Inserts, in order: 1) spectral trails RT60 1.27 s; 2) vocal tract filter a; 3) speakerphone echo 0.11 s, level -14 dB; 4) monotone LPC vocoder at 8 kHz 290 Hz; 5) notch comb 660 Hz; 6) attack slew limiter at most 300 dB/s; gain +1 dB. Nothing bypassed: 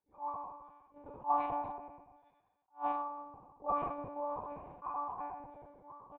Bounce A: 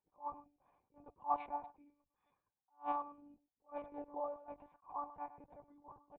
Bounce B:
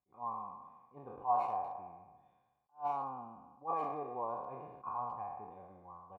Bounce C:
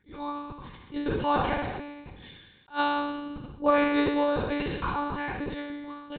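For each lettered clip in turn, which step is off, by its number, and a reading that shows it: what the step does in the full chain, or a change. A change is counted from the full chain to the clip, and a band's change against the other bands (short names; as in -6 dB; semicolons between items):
1, crest factor change +3.5 dB; 4, 2 kHz band -4.5 dB; 2, 1 kHz band -14.0 dB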